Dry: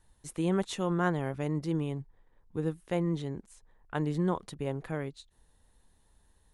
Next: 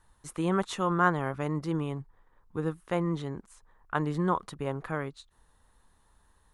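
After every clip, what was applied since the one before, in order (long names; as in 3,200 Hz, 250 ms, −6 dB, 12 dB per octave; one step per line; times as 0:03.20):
parametric band 1,200 Hz +11 dB 0.91 octaves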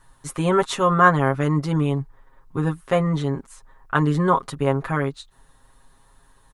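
comb filter 7.4 ms, depth 79%
level +7.5 dB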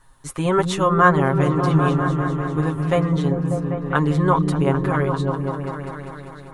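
echo whose low-pass opens from repeat to repeat 198 ms, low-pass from 200 Hz, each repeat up 1 octave, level 0 dB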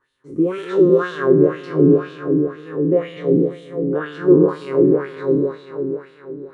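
peak hold with a decay on every bin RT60 2.47 s
low shelf with overshoot 570 Hz +10.5 dB, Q 3
auto-filter band-pass sine 2 Hz 270–3,400 Hz
level −4 dB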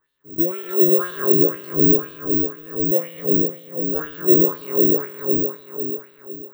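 bad sample-rate conversion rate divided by 2×, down filtered, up zero stuff
level −5.5 dB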